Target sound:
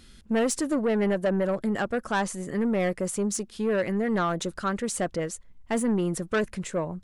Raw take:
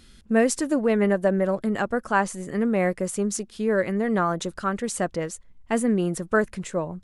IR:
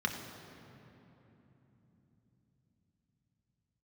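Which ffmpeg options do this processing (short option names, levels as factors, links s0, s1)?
-af "asoftclip=type=tanh:threshold=0.112"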